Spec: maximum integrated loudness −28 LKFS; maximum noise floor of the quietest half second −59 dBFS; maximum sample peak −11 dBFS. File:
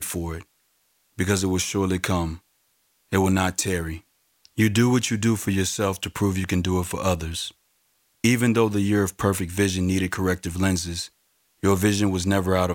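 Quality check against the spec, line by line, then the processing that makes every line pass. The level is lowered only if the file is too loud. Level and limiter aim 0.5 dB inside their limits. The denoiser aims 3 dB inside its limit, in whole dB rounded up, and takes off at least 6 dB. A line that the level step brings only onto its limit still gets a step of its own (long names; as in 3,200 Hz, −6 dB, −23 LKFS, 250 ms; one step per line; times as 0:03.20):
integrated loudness −23.5 LKFS: out of spec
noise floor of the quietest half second −67 dBFS: in spec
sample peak −5.0 dBFS: out of spec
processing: level −5 dB
brickwall limiter −11.5 dBFS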